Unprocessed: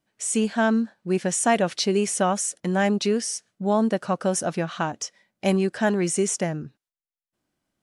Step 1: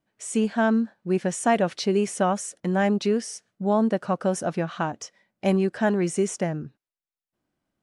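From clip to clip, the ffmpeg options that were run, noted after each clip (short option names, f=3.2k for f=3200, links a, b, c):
-af "highshelf=f=3k:g=-8.5"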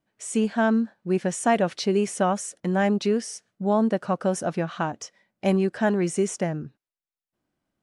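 -af anull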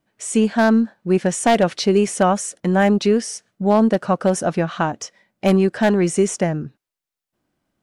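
-af "aeval=exprs='0.224*(abs(mod(val(0)/0.224+3,4)-2)-1)':c=same,aeval=exprs='0.237*(cos(1*acos(clip(val(0)/0.237,-1,1)))-cos(1*PI/2))+0.0015*(cos(6*acos(clip(val(0)/0.237,-1,1)))-cos(6*PI/2))':c=same,volume=6.5dB"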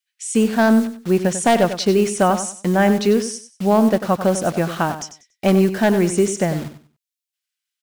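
-filter_complex "[0:a]acrossover=split=2100[a][b];[a]acrusher=bits=5:mix=0:aa=0.000001[c];[c][b]amix=inputs=2:normalize=0,aecho=1:1:95|190|285:0.282|0.0705|0.0176"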